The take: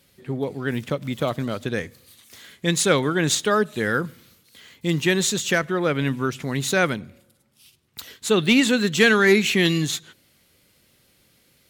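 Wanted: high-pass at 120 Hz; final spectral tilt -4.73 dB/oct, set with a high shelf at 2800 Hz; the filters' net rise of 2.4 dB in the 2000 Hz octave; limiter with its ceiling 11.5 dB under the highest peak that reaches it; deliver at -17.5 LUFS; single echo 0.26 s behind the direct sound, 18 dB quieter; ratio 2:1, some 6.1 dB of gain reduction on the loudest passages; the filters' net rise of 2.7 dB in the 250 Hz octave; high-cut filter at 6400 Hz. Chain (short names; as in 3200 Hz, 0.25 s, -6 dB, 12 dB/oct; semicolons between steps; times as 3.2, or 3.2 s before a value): HPF 120 Hz; LPF 6400 Hz; bell 250 Hz +4 dB; bell 2000 Hz +5.5 dB; high shelf 2800 Hz -6.5 dB; compressor 2:1, threshold -21 dBFS; limiter -19.5 dBFS; echo 0.26 s -18 dB; gain +12 dB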